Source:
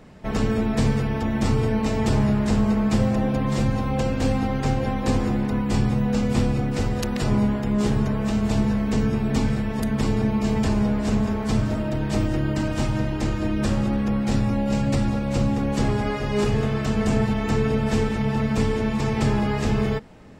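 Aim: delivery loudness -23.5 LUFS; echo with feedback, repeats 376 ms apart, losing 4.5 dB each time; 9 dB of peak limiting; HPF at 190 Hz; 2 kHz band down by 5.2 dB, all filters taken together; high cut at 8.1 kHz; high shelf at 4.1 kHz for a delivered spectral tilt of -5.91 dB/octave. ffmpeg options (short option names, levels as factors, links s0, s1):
-af "highpass=190,lowpass=8100,equalizer=f=2000:t=o:g=-8,highshelf=f=4100:g=6,alimiter=limit=0.112:level=0:latency=1,aecho=1:1:376|752|1128|1504|1880|2256|2632|3008|3384:0.596|0.357|0.214|0.129|0.0772|0.0463|0.0278|0.0167|0.01,volume=1.41"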